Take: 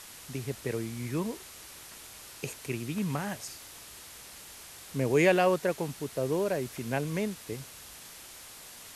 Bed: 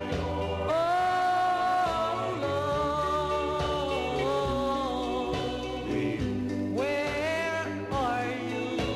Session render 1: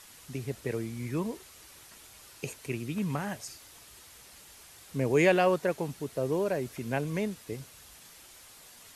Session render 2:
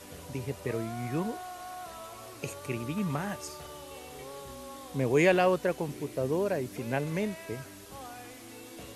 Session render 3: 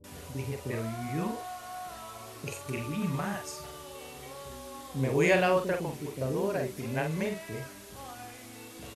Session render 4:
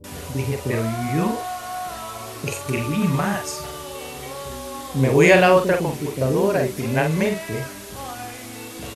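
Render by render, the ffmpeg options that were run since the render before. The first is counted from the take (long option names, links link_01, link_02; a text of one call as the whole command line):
ffmpeg -i in.wav -af "afftdn=noise_reduction=6:noise_floor=-48" out.wav
ffmpeg -i in.wav -i bed.wav -filter_complex "[1:a]volume=-16.5dB[link_01];[0:a][link_01]amix=inputs=2:normalize=0" out.wav
ffmpeg -i in.wav -filter_complex "[0:a]asplit=2[link_01][link_02];[link_02]adelay=45,volume=-6dB[link_03];[link_01][link_03]amix=inputs=2:normalize=0,acrossover=split=390[link_04][link_05];[link_05]adelay=40[link_06];[link_04][link_06]amix=inputs=2:normalize=0" out.wav
ffmpeg -i in.wav -af "volume=11dB,alimiter=limit=-1dB:level=0:latency=1" out.wav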